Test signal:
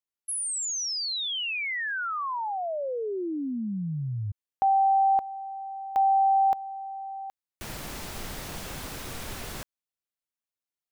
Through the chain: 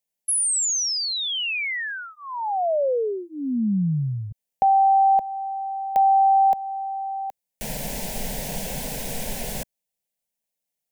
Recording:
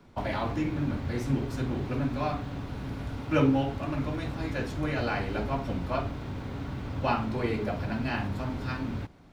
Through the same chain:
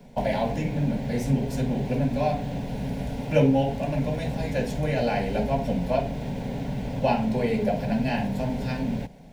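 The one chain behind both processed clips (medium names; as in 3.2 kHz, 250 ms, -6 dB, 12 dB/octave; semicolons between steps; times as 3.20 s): peaking EQ 4 kHz -5.5 dB 1.3 oct; in parallel at -3 dB: compression, threshold -32 dBFS; on the sum: static phaser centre 330 Hz, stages 6; trim +6 dB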